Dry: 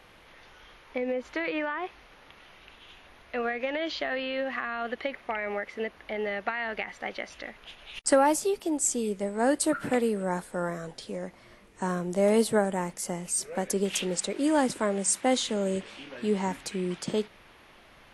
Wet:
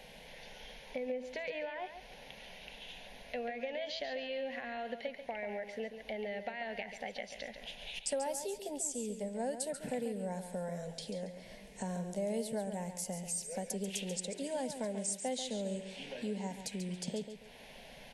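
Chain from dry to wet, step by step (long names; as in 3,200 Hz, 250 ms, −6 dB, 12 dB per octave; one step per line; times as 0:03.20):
phaser with its sweep stopped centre 330 Hz, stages 6
downward compressor 2.5 to 1, threshold −48 dBFS, peak gain reduction 19 dB
on a send: repeating echo 139 ms, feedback 30%, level −9.5 dB
on the sum: level +5 dB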